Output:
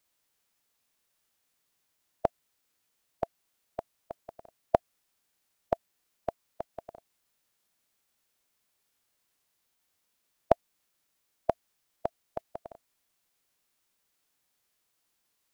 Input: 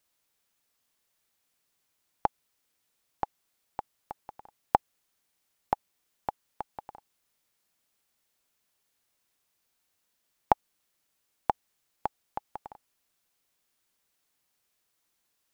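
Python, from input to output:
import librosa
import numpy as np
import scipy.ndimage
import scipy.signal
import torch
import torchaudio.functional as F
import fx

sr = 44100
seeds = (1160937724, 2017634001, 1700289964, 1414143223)

y = fx.formant_shift(x, sr, semitones=-4)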